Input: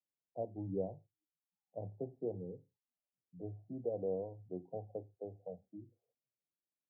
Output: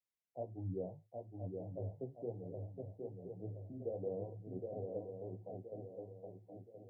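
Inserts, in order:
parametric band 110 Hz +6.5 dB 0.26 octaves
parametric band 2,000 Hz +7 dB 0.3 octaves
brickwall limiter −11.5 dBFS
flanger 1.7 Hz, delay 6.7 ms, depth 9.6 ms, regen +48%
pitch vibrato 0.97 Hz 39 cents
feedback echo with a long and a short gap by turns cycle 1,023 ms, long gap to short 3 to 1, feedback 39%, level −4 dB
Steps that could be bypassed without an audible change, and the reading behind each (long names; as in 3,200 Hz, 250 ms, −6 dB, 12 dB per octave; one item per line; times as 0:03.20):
parametric band 2,000 Hz: nothing at its input above 810 Hz
brickwall limiter −11.5 dBFS: peak of its input −25.5 dBFS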